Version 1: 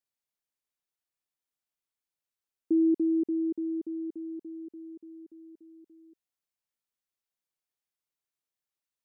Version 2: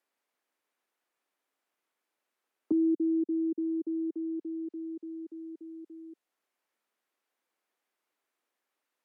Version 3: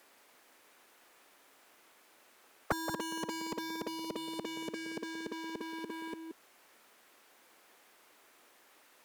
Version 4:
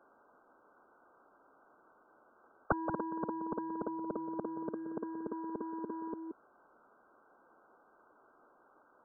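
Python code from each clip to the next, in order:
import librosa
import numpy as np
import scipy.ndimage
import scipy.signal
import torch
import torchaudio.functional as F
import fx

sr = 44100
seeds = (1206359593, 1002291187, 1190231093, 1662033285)

y1 = scipy.signal.sosfilt(scipy.signal.butter(4, 250.0, 'highpass', fs=sr, output='sos'), x)
y1 = fx.env_lowpass_down(y1, sr, base_hz=360.0, full_db=-29.5)
y1 = fx.band_squash(y1, sr, depth_pct=40)
y1 = y1 * 10.0 ** (2.0 / 20.0)
y2 = fx.leveller(y1, sr, passes=1)
y2 = y2 + 10.0 ** (-13.5 / 20.0) * np.pad(y2, (int(177 * sr / 1000.0), 0))[:len(y2)]
y2 = fx.spectral_comp(y2, sr, ratio=10.0)
y2 = y2 * 10.0 ** (1.0 / 20.0)
y3 = fx.brickwall_lowpass(y2, sr, high_hz=1600.0)
y3 = y3 * 10.0 ** (2.0 / 20.0)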